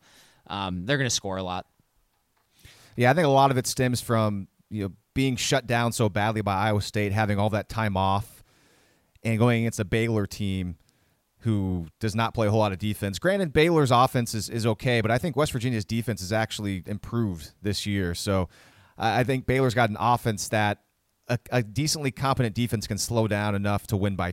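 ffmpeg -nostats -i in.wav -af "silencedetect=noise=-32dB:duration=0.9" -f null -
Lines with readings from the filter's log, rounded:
silence_start: 1.60
silence_end: 2.98 | silence_duration: 1.38
silence_start: 8.21
silence_end: 9.25 | silence_duration: 1.04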